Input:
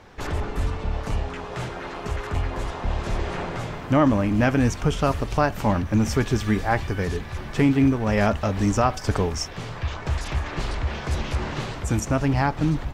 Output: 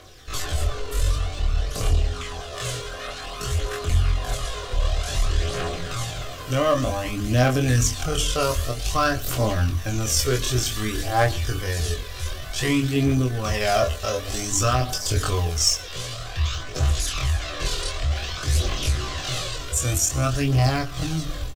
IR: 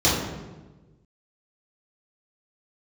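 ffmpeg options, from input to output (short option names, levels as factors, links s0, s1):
-filter_complex "[0:a]equalizer=f=200:t=o:w=0.42:g=-14.5,bandreject=f=50:t=h:w=6,bandreject=f=100:t=h:w=6,bandreject=f=150:t=h:w=6,bandreject=f=200:t=h:w=6,bandreject=f=250:t=h:w=6,bandreject=f=300:t=h:w=6,bandreject=f=350:t=h:w=6,bandreject=f=400:t=h:w=6,bandreject=f=450:t=h:w=6,aphaser=in_gain=1:out_gain=1:delay=2.2:decay=0.47:speed=0.89:type=triangular,asplit=2[s0][s1];[s1]asoftclip=type=hard:threshold=0.158,volume=0.501[s2];[s0][s2]amix=inputs=2:normalize=0,aexciter=amount=2.9:drive=6.9:freq=3000,atempo=0.6,asuperstop=centerf=890:order=8:qfactor=5.3,asplit=2[s3][s4];[s4]adelay=24,volume=0.562[s5];[s3][s5]amix=inputs=2:normalize=0,asplit=2[s6][s7];[s7]aecho=0:1:122:0.075[s8];[s6][s8]amix=inputs=2:normalize=0,volume=0.562"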